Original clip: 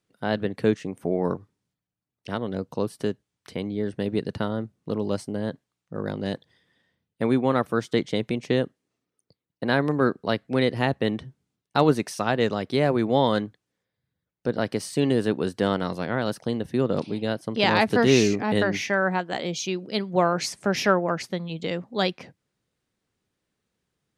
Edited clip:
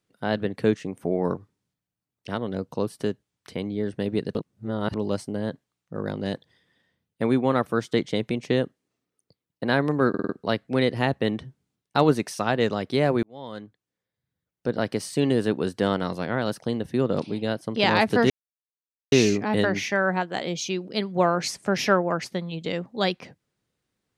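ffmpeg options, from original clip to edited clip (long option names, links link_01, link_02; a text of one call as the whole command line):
ffmpeg -i in.wav -filter_complex "[0:a]asplit=9[link_01][link_02][link_03][link_04][link_05][link_06][link_07][link_08][link_09];[link_01]atrim=end=4.352[link_10];[link_02]atrim=start=4.348:end=4.942,asetpts=PTS-STARTPTS,areverse[link_11];[link_03]atrim=start=4.938:end=10.142[link_12];[link_04]atrim=start=10.088:end=10.142[link_13];[link_05]atrim=start=10.088:end=10.142[link_14];[link_06]atrim=start=10.088:end=10.142[link_15];[link_07]atrim=start=10.088:end=13.03,asetpts=PTS-STARTPTS,afade=type=out:start_time=2.938:duration=0.004:curve=hsin[link_16];[link_08]atrim=start=13.03:end=18.1,asetpts=PTS-STARTPTS,afade=type=in:duration=1.53,afade=type=out:start_time=5.066:duration=0.004:curve=hsin,apad=pad_dur=0.82[link_17];[link_09]atrim=start=18.1,asetpts=PTS-STARTPTS,afade=type=in:duration=0.004:curve=hsin[link_18];[link_10][link_11]acrossfade=duration=0.004:curve1=hsin:curve2=hsin[link_19];[link_19][link_12]acrossfade=duration=0.004:curve1=hsin:curve2=hsin[link_20];[link_20][link_13]acrossfade=duration=0.004:curve1=hsin:curve2=hsin[link_21];[link_21][link_14]acrossfade=duration=0.004:curve1=hsin:curve2=hsin[link_22];[link_22][link_15]acrossfade=duration=0.004:curve1=hsin:curve2=hsin[link_23];[link_16][link_17][link_18]concat=n=3:v=0:a=1[link_24];[link_23][link_24]acrossfade=duration=0.004:curve1=hsin:curve2=hsin" out.wav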